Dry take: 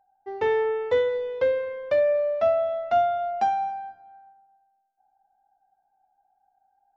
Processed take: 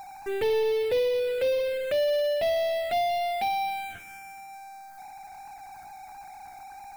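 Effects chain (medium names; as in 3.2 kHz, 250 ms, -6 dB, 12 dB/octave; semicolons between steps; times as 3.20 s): power-law waveshaper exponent 0.35; touch-sensitive phaser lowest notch 450 Hz, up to 1.4 kHz, full sweep at -16.5 dBFS; trim -5.5 dB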